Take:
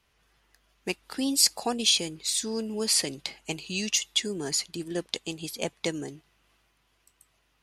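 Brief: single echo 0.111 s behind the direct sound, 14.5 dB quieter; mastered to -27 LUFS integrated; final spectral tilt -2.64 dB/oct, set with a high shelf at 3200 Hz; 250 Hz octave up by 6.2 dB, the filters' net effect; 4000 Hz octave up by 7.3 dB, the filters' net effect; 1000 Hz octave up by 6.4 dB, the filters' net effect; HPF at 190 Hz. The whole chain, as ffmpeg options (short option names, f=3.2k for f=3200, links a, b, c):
-af "highpass=190,equalizer=f=250:t=o:g=8.5,equalizer=f=1k:t=o:g=7.5,highshelf=f=3.2k:g=3.5,equalizer=f=4k:t=o:g=6,aecho=1:1:111:0.188,volume=-6dB"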